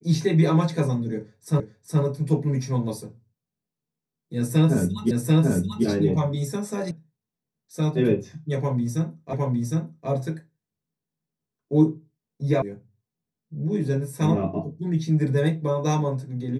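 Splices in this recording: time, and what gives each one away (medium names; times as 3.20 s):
1.60 s: repeat of the last 0.42 s
5.11 s: repeat of the last 0.74 s
6.91 s: sound stops dead
9.33 s: repeat of the last 0.76 s
12.62 s: sound stops dead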